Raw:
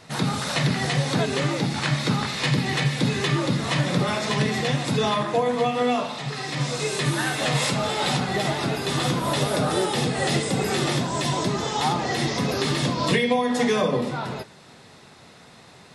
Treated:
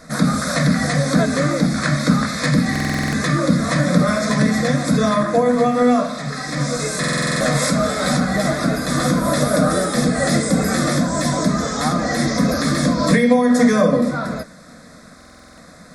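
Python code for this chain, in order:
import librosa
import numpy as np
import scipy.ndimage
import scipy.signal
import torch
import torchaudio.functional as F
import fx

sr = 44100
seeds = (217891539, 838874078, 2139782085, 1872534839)

y = fx.low_shelf(x, sr, hz=150.0, db=10.0)
y = fx.fixed_phaser(y, sr, hz=580.0, stages=8)
y = fx.buffer_glitch(y, sr, at_s=(2.71, 6.99, 15.16), block=2048, repeats=8)
y = y * librosa.db_to_amplitude(8.0)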